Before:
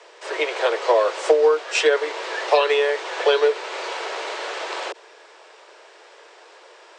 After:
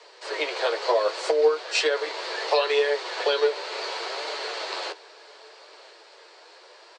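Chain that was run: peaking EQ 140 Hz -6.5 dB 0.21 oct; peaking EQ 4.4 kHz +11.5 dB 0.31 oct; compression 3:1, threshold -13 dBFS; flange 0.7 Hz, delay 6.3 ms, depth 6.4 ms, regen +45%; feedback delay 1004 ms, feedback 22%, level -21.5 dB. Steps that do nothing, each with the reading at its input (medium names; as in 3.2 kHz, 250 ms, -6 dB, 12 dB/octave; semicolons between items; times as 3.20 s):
peaking EQ 140 Hz: input has nothing below 290 Hz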